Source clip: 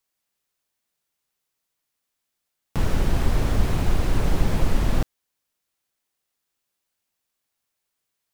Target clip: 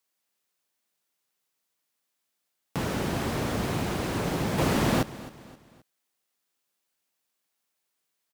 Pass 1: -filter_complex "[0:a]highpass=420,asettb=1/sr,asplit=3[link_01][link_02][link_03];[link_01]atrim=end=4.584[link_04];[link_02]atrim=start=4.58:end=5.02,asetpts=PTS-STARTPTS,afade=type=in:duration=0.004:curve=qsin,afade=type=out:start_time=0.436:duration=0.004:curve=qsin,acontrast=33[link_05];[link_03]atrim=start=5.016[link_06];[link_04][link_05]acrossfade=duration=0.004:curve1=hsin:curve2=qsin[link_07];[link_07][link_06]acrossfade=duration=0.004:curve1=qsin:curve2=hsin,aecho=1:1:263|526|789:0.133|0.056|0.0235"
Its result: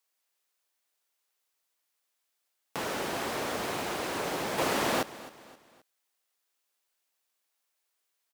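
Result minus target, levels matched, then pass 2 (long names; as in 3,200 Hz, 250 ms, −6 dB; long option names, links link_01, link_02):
125 Hz band −12.0 dB
-filter_complex "[0:a]highpass=150,asettb=1/sr,asplit=3[link_01][link_02][link_03];[link_01]atrim=end=4.584[link_04];[link_02]atrim=start=4.58:end=5.02,asetpts=PTS-STARTPTS,afade=type=in:duration=0.004:curve=qsin,afade=type=out:start_time=0.436:duration=0.004:curve=qsin,acontrast=33[link_05];[link_03]atrim=start=5.016[link_06];[link_04][link_05]acrossfade=duration=0.004:curve1=hsin:curve2=qsin[link_07];[link_07][link_06]acrossfade=duration=0.004:curve1=qsin:curve2=hsin,aecho=1:1:263|526|789:0.133|0.056|0.0235"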